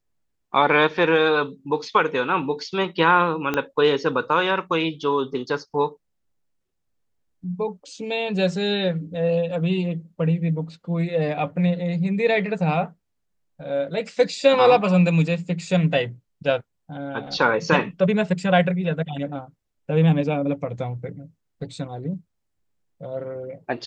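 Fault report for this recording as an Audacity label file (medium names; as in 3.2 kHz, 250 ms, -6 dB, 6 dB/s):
3.540000	3.540000	pop -10 dBFS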